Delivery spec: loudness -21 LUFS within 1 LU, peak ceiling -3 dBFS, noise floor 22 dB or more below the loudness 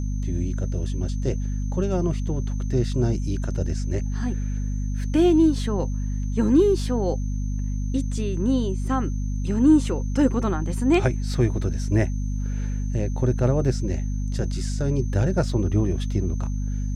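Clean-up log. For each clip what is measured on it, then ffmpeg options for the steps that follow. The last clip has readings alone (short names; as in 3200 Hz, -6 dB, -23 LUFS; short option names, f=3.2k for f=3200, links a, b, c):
hum 50 Hz; harmonics up to 250 Hz; hum level -23 dBFS; steady tone 6200 Hz; tone level -48 dBFS; loudness -24.0 LUFS; peak -6.5 dBFS; loudness target -21.0 LUFS
-> -af "bandreject=f=50:t=h:w=6,bandreject=f=100:t=h:w=6,bandreject=f=150:t=h:w=6,bandreject=f=200:t=h:w=6,bandreject=f=250:t=h:w=6"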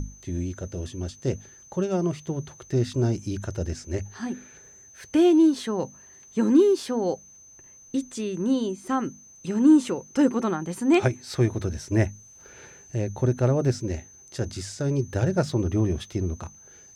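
hum none; steady tone 6200 Hz; tone level -48 dBFS
-> -af "bandreject=f=6.2k:w=30"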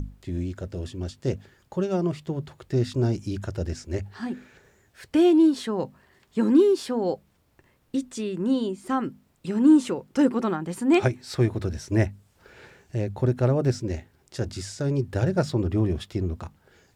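steady tone none; loudness -25.5 LUFS; peak -8.0 dBFS; loudness target -21.0 LUFS
-> -af "volume=4.5dB"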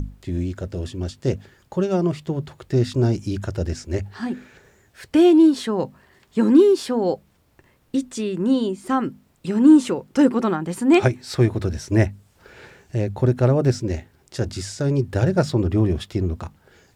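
loudness -21.0 LUFS; peak -3.5 dBFS; noise floor -60 dBFS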